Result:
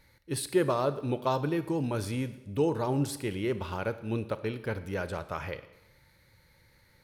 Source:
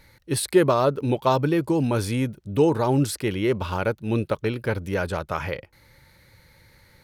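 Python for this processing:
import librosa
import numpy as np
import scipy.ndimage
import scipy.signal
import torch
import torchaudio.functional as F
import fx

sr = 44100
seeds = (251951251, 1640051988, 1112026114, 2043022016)

y = fx.rev_schroeder(x, sr, rt60_s=0.94, comb_ms=28, drr_db=12.5)
y = y * 10.0 ** (-8.0 / 20.0)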